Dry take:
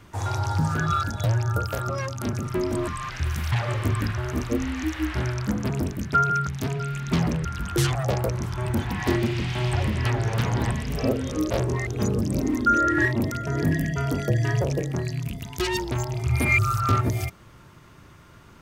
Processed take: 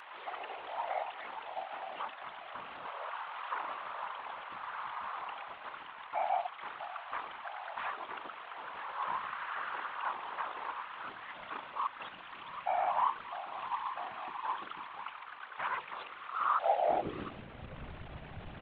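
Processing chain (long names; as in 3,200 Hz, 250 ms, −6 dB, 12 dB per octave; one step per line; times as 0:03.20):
linear delta modulator 32 kbit/s, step −33.5 dBFS
high-pass filter sweep 1,900 Hz → 78 Hz, 0:16.54–0:17.98
mains-hum notches 60/120/180 Hz
pitch shifter −10.5 semitones
random phases in short frames
level −7.5 dB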